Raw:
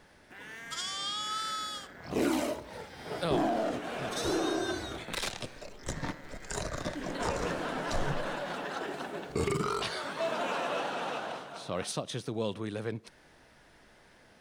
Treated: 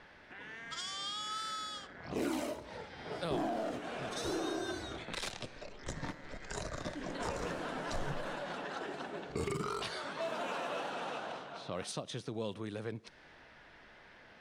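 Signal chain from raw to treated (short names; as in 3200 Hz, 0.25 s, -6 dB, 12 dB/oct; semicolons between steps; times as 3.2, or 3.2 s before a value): low-pass opened by the level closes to 2800 Hz, open at -29 dBFS; in parallel at +0.5 dB: compressor, threshold -38 dBFS, peak gain reduction 13 dB; on the sum: mismatched tape noise reduction encoder only; gain -8.5 dB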